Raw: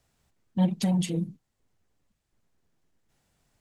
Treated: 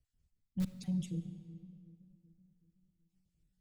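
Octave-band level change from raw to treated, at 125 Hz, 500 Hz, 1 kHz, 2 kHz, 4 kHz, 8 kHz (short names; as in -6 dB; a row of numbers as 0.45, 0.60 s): -10.5 dB, -19.5 dB, under -25 dB, under -15 dB, -16.0 dB, -15.0 dB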